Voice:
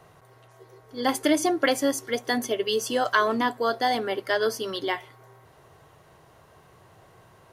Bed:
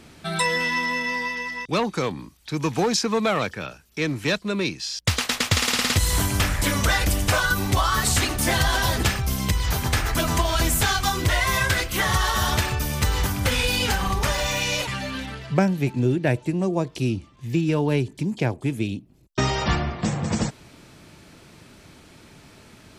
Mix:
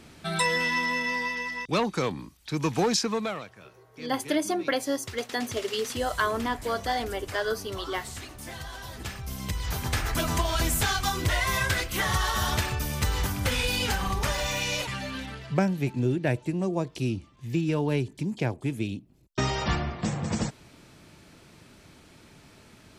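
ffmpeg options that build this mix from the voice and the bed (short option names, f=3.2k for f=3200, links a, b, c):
-filter_complex "[0:a]adelay=3050,volume=-4.5dB[a];[1:a]volume=11.5dB,afade=t=out:st=2.96:d=0.5:silence=0.158489,afade=t=in:st=8.9:d=1.21:silence=0.199526[b];[a][b]amix=inputs=2:normalize=0"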